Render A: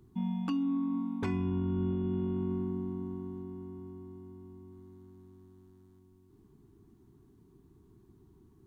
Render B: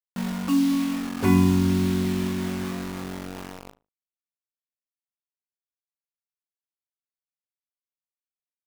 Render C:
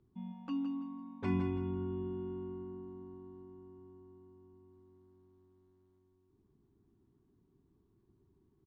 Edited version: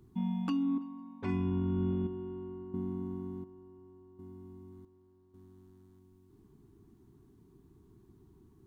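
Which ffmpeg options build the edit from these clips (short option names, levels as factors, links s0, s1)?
-filter_complex "[2:a]asplit=4[s0][s1][s2][s3];[0:a]asplit=5[s4][s5][s6][s7][s8];[s4]atrim=end=0.782[s9];[s0]atrim=start=0.778:end=1.292[s10];[s5]atrim=start=1.288:end=2.072[s11];[s1]atrim=start=2.068:end=2.742[s12];[s6]atrim=start=2.738:end=3.442[s13];[s2]atrim=start=3.438:end=4.192[s14];[s7]atrim=start=4.188:end=4.852[s15];[s3]atrim=start=4.848:end=5.342[s16];[s8]atrim=start=5.338[s17];[s9][s10]acrossfade=d=0.004:c1=hsin:c2=hsin[s18];[s18][s11]acrossfade=d=0.004:c1=hsin:c2=hsin[s19];[s19][s12]acrossfade=d=0.004:c1=hsin:c2=hsin[s20];[s20][s13]acrossfade=d=0.004:c1=hsin:c2=hsin[s21];[s21][s14]acrossfade=d=0.004:c1=hsin:c2=hsin[s22];[s22][s15]acrossfade=d=0.004:c1=hsin:c2=hsin[s23];[s23][s16]acrossfade=d=0.004:c1=hsin:c2=hsin[s24];[s24][s17]acrossfade=d=0.004:c1=hsin:c2=hsin"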